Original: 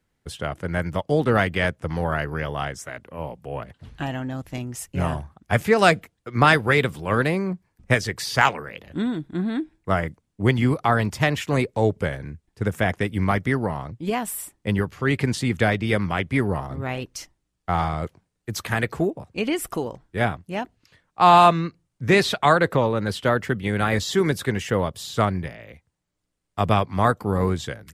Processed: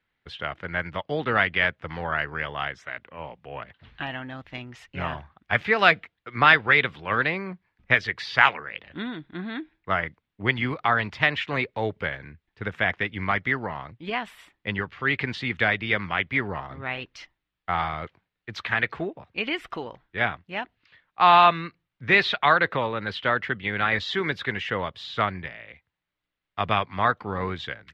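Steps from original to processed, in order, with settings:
drawn EQ curve 150 Hz 0 dB, 510 Hz +3 dB, 2,000 Hz +14 dB, 3,700 Hz +11 dB, 9,200 Hz −21 dB
level −10 dB

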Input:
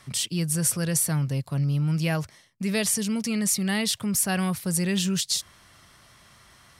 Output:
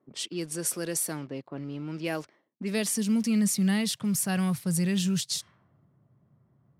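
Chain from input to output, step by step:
high-pass filter sweep 320 Hz → 130 Hz, 0:02.31–0:04.34
in parallel at −12 dB: bit-depth reduction 6 bits, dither none
on the sum: low-pass that shuts in the quiet parts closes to 400 Hz, open at −20 dBFS
level −7 dB

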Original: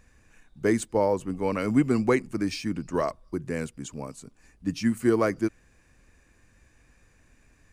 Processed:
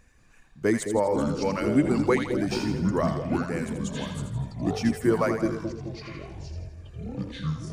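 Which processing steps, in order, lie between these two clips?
reverb reduction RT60 1 s
delay with pitch and tempo change per echo 188 ms, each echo −7 semitones, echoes 3, each echo −6 dB
echo with a time of its own for lows and highs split 600 Hz, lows 215 ms, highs 82 ms, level −7 dB

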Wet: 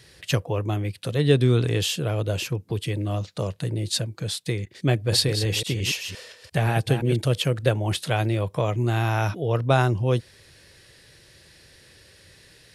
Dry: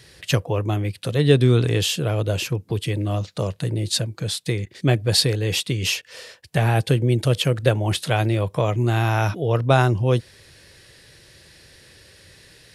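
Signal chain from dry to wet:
0:04.94–0:07.17: delay that plays each chunk backwards 173 ms, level −8 dB
level −3 dB

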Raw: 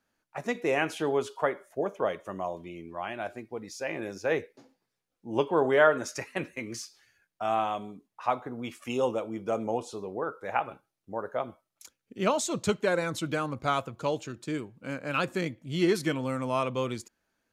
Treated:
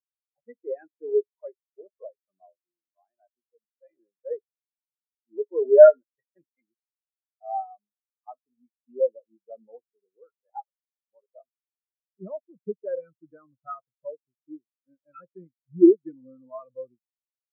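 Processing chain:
high shelf with overshoot 3,100 Hz −11.5 dB, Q 1.5
leveller curve on the samples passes 2
every bin expanded away from the loudest bin 4 to 1
level +5.5 dB

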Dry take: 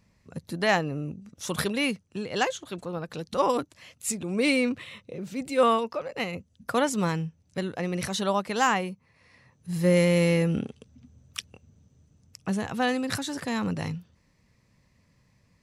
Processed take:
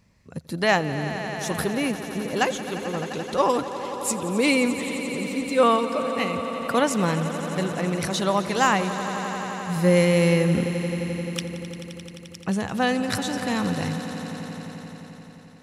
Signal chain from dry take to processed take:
0:01.48–0:02.41: parametric band 3,500 Hz −8 dB 2.2 octaves
echo that builds up and dies away 87 ms, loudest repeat 5, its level −15 dB
level +3 dB

